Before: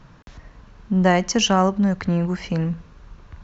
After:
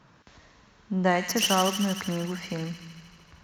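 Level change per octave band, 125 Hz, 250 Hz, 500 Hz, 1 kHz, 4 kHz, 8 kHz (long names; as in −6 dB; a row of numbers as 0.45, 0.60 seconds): −9.5 dB, −8.5 dB, −6.0 dB, −5.0 dB, −2.0 dB, can't be measured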